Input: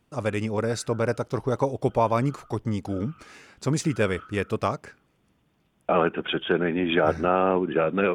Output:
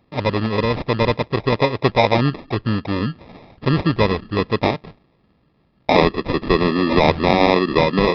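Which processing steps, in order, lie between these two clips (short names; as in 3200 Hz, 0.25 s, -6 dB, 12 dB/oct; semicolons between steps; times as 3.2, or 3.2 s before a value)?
sample-rate reducer 1500 Hz, jitter 0%; downsampling 11025 Hz; gain +7 dB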